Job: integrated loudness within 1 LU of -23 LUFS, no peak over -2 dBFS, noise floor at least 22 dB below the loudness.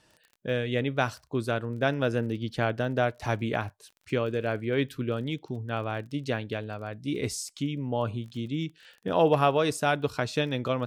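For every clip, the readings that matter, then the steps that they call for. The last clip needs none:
tick rate 25 per s; loudness -29.5 LUFS; peak level -10.0 dBFS; loudness target -23.0 LUFS
-> de-click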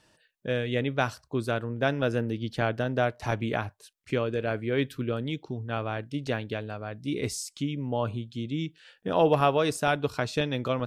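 tick rate 0 per s; loudness -29.5 LUFS; peak level -10.0 dBFS; loudness target -23.0 LUFS
-> trim +6.5 dB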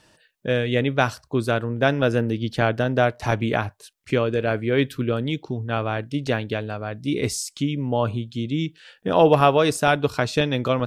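loudness -23.0 LUFS; peak level -3.5 dBFS; noise floor -62 dBFS

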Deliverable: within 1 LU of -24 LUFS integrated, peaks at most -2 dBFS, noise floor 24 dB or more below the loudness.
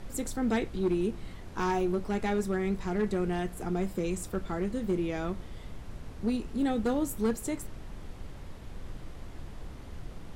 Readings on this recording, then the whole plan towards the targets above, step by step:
clipped samples 0.8%; clipping level -21.5 dBFS; noise floor -45 dBFS; noise floor target -56 dBFS; loudness -31.5 LUFS; peak level -21.5 dBFS; loudness target -24.0 LUFS
-> clip repair -21.5 dBFS; noise print and reduce 11 dB; trim +7.5 dB

